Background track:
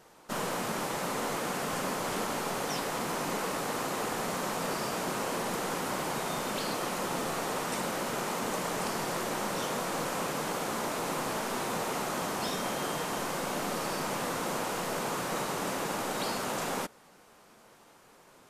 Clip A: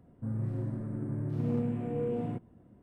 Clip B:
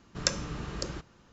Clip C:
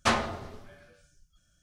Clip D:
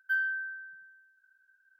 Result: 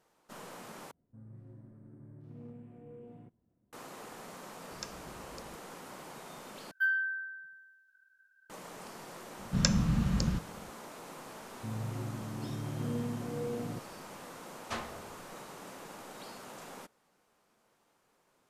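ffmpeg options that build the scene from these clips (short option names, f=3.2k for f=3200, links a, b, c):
-filter_complex "[1:a]asplit=2[a][b];[2:a]asplit=2[c][d];[0:a]volume=-14.5dB[e];[d]lowshelf=f=280:t=q:w=3:g=8.5[f];[e]asplit=3[g][h][i];[g]atrim=end=0.914[j];[a]atrim=end=2.82,asetpts=PTS-STARTPTS,volume=-18dB[k];[h]atrim=start=3.726:end=6.714[l];[4:a]atrim=end=1.79[m];[i]atrim=start=8.496[n];[c]atrim=end=1.32,asetpts=PTS-STARTPTS,volume=-16dB,afade=t=in:d=0.004:c=hsin,afade=t=out:st=1.316:d=0.004:c=hsin,adelay=4560[o];[f]atrim=end=1.32,asetpts=PTS-STARTPTS,volume=-1dB,afade=t=in:d=0.004:c=hsin,afade=t=out:st=1.316:d=0.004:c=hsin,adelay=413658S[p];[b]atrim=end=2.82,asetpts=PTS-STARTPTS,volume=-4.5dB,afade=t=in:d=0.004:c=hsin,afade=t=out:st=2.816:d=0.004:c=hsin,adelay=11410[q];[3:a]atrim=end=1.62,asetpts=PTS-STARTPTS,volume=-14dB,afade=t=in:d=0.004:c=hsin,afade=t=out:st=1.616:d=0.004:c=hsin,adelay=14650[r];[j][k]acrossfade=d=0.004:c1=hsin:c2=hsin[s];[s][l]acrossfade=d=0.004:c1=hsin:c2=hsin[t];[t][m]acrossfade=d=0.004:c1=hsin:c2=hsin[u];[u][n]acrossfade=d=0.004:c1=hsin:c2=hsin[v];[v][o][p][q][r]amix=inputs=5:normalize=0"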